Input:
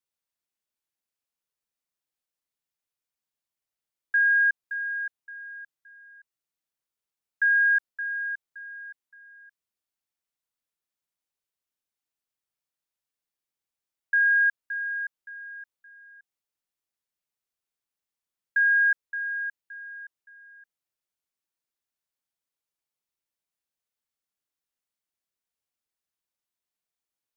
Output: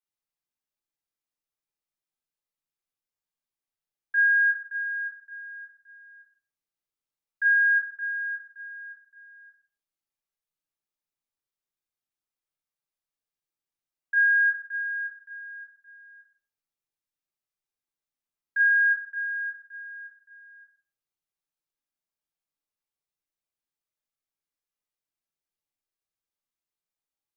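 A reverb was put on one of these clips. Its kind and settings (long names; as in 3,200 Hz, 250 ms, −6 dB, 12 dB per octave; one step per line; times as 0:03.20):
rectangular room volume 740 cubic metres, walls furnished, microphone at 3.8 metres
level −9 dB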